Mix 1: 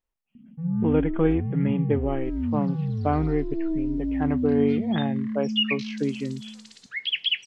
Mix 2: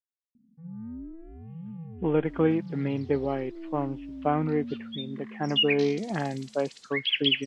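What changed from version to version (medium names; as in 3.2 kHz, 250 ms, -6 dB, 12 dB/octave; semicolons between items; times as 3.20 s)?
speech: entry +1.20 s; first sound -11.0 dB; master: add bass shelf 210 Hz -6 dB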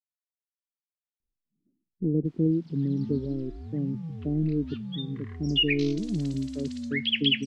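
speech: add inverse Chebyshev low-pass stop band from 1.6 kHz, stop band 70 dB; first sound: entry +2.25 s; master: add bass shelf 210 Hz +6 dB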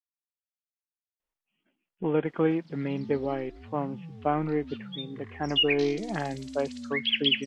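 speech: remove inverse Chebyshev low-pass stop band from 1.6 kHz, stop band 70 dB; master: add bass shelf 240 Hz -9.5 dB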